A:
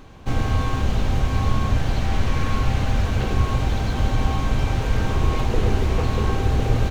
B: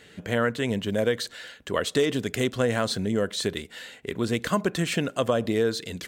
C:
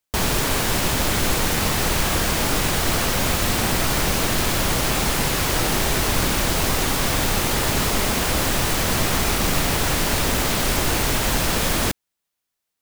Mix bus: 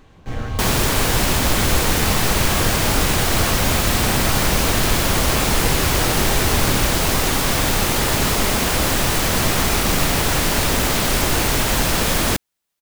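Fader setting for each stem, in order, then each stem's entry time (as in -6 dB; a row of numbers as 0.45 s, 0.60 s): -5.0 dB, -13.0 dB, +2.5 dB; 0.00 s, 0.00 s, 0.45 s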